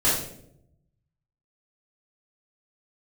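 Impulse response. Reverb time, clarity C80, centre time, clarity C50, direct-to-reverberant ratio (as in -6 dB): 0.75 s, 6.0 dB, 51 ms, 2.0 dB, -9.5 dB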